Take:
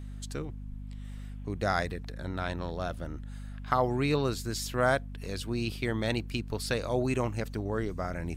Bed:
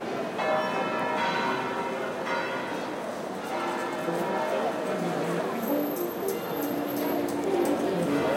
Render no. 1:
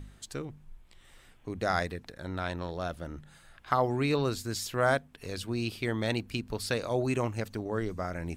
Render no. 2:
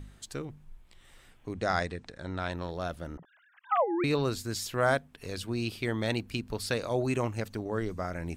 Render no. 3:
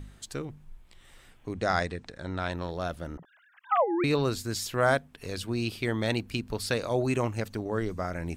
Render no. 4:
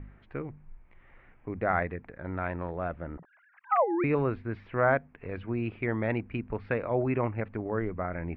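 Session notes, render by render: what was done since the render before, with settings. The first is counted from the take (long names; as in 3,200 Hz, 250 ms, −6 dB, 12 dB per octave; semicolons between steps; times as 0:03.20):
hum removal 50 Hz, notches 5
0:01.53–0:02.52: Butterworth low-pass 9,300 Hz 72 dB per octave; 0:03.17–0:04.04: three sine waves on the formant tracks
level +2 dB
elliptic low-pass filter 2,300 Hz, stop band 80 dB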